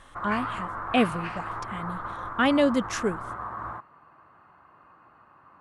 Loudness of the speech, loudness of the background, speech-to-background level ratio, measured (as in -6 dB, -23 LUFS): -26.5 LUFS, -34.5 LUFS, 8.0 dB